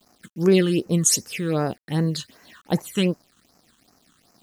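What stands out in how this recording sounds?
a quantiser's noise floor 10 bits, dither none
phaser sweep stages 8, 2.6 Hz, lowest notch 640–3,400 Hz

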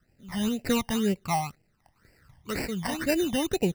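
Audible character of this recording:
aliases and images of a low sample rate 3,300 Hz, jitter 0%
phaser sweep stages 12, 2 Hz, lowest notch 410–1,200 Hz

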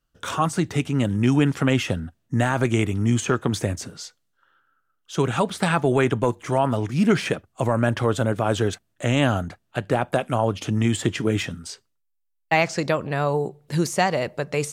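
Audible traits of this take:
background noise floor −73 dBFS
spectral slope −5.5 dB per octave

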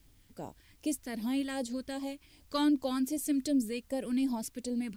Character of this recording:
phaser sweep stages 2, 2.6 Hz, lowest notch 660–1,500 Hz
a quantiser's noise floor 12 bits, dither triangular

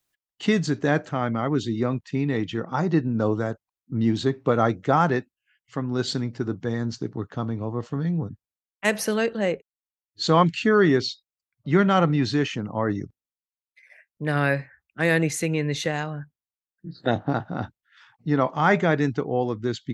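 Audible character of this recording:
background noise floor −96 dBFS
spectral slope −5.5 dB per octave

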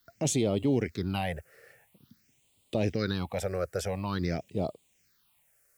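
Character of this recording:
a quantiser's noise floor 12 bits, dither triangular
phaser sweep stages 6, 0.48 Hz, lowest notch 240–1,600 Hz

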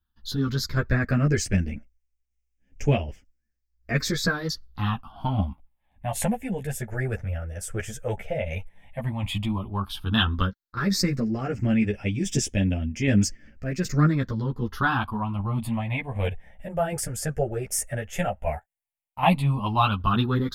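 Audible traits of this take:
phaser sweep stages 6, 0.1 Hz, lowest notch 270–1,100 Hz
tremolo saw down 1.3 Hz, depth 45%
a shimmering, thickened sound

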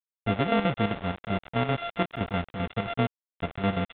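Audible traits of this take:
a buzz of ramps at a fixed pitch in blocks of 64 samples
chopped level 7.7 Hz, depth 65%, duty 60%
a quantiser's noise floor 6 bits, dither none
mu-law

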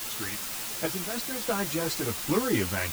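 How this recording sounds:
sample-and-hold tremolo 3.5 Hz, depth 70%
a quantiser's noise floor 6 bits, dither triangular
a shimmering, thickened sound

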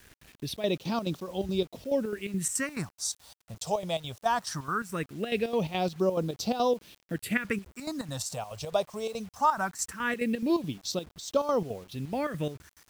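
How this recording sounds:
chopped level 4.7 Hz, depth 65%, duty 65%
phaser sweep stages 4, 0.2 Hz, lowest notch 280–1,900 Hz
a quantiser's noise floor 10 bits, dither none

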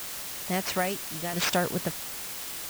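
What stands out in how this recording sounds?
aliases and images of a low sample rate 11,000 Hz
tremolo saw down 0.75 Hz, depth 65%
a quantiser's noise floor 6 bits, dither triangular

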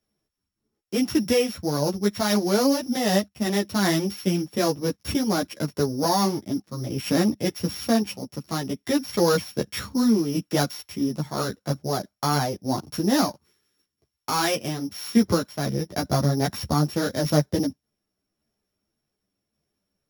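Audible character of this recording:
a buzz of ramps at a fixed pitch in blocks of 8 samples
tremolo saw down 0.87 Hz, depth 30%
a shimmering, thickened sound

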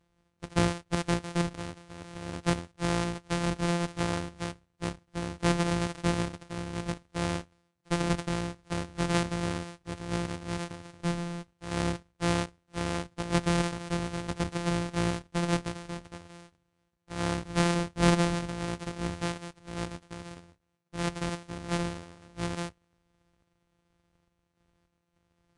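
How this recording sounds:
a buzz of ramps at a fixed pitch in blocks of 256 samples
sample-and-hold tremolo
Ogg Vorbis

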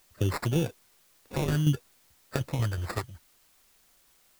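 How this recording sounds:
phaser sweep stages 2, 0.6 Hz, lowest notch 220–1,300 Hz
aliases and images of a low sample rate 3,100 Hz, jitter 0%
tremolo saw down 5.4 Hz, depth 55%
a quantiser's noise floor 12 bits, dither triangular

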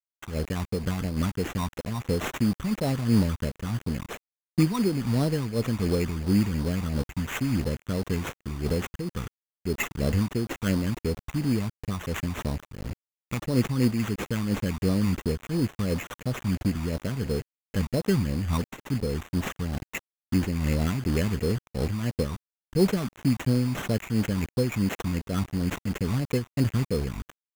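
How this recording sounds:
a quantiser's noise floor 6 bits, dither none
phaser sweep stages 12, 2.9 Hz, lowest notch 490–2,000 Hz
aliases and images of a low sample rate 4,700 Hz, jitter 0%
amplitude modulation by smooth noise

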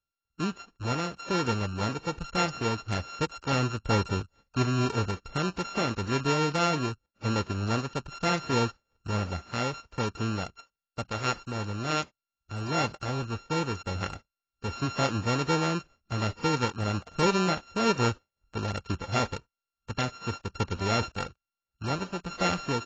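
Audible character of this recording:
a buzz of ramps at a fixed pitch in blocks of 32 samples
AAC

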